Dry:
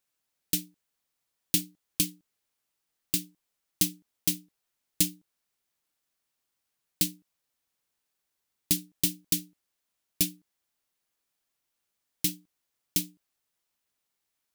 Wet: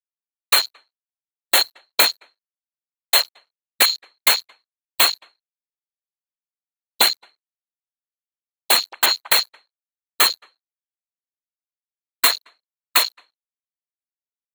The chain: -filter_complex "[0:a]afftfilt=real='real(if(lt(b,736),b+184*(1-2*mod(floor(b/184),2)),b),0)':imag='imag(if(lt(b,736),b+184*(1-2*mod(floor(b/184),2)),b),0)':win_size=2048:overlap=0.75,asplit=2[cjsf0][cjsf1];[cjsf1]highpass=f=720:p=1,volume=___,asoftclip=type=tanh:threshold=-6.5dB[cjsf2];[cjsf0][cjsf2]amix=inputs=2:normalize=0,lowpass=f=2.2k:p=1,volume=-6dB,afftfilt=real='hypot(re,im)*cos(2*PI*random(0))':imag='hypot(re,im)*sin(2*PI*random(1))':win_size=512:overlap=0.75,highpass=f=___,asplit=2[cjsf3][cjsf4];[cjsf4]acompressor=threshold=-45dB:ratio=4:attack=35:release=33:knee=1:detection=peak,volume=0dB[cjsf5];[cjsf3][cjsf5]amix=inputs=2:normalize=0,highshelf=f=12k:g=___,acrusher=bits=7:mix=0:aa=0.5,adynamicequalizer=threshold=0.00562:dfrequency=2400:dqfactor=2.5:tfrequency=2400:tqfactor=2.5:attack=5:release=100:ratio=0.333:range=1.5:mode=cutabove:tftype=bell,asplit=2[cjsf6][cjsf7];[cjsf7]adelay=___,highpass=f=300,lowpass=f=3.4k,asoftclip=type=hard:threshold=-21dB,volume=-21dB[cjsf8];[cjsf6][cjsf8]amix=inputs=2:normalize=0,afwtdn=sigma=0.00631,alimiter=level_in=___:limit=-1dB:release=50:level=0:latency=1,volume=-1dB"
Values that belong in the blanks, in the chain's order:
11dB, 330, 8.5, 220, 22.5dB